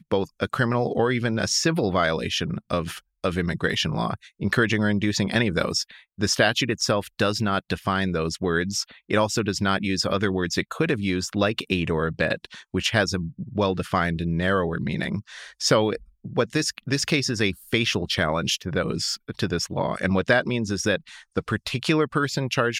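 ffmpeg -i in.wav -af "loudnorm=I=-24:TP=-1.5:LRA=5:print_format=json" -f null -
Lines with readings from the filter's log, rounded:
"input_i" : "-24.3",
"input_tp" : "-5.6",
"input_lra" : "1.4",
"input_thresh" : "-34.3",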